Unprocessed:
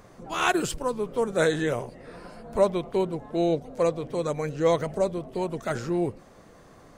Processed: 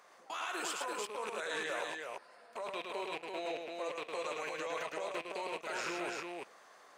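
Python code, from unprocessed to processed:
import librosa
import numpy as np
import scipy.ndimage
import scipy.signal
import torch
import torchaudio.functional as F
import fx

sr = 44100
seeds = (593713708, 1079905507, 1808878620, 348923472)

y = fx.rattle_buzz(x, sr, strikes_db=-37.0, level_db=-33.0)
y = scipy.signal.sosfilt(scipy.signal.butter(2, 860.0, 'highpass', fs=sr, output='sos'), y)
y = fx.high_shelf(y, sr, hz=7700.0, db=-6.0)
y = fx.level_steps(y, sr, step_db=22)
y = fx.echo_multitap(y, sr, ms=(42, 108, 338), db=(-15.5, -4.0, -3.5))
y = y * 10.0 ** (4.0 / 20.0)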